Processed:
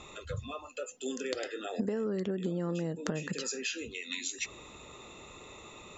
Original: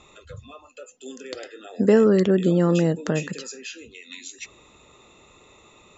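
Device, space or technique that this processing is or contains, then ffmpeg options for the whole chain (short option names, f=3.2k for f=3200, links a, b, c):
serial compression, leveller first: -af "acompressor=threshold=-21dB:ratio=3,acompressor=threshold=-33dB:ratio=8,volume=3dB"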